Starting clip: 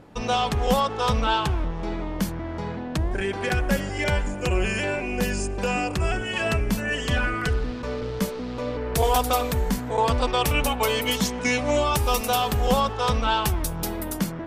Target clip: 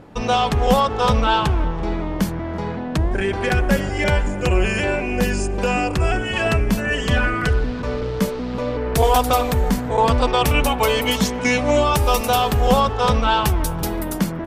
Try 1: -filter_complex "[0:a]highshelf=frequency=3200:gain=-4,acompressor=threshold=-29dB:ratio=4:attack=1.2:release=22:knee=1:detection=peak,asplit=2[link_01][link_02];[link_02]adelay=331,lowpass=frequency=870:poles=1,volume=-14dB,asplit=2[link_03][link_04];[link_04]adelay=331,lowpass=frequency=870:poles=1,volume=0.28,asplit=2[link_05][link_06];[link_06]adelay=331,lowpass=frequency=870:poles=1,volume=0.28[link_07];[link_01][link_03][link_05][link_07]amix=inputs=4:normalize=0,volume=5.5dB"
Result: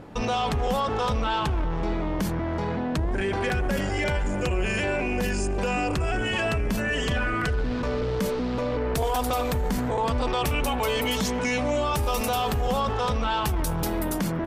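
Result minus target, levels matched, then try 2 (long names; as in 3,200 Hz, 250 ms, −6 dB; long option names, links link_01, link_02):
downward compressor: peak gain reduction +12.5 dB
-filter_complex "[0:a]highshelf=frequency=3200:gain=-4,asplit=2[link_01][link_02];[link_02]adelay=331,lowpass=frequency=870:poles=1,volume=-14dB,asplit=2[link_03][link_04];[link_04]adelay=331,lowpass=frequency=870:poles=1,volume=0.28,asplit=2[link_05][link_06];[link_06]adelay=331,lowpass=frequency=870:poles=1,volume=0.28[link_07];[link_01][link_03][link_05][link_07]amix=inputs=4:normalize=0,volume=5.5dB"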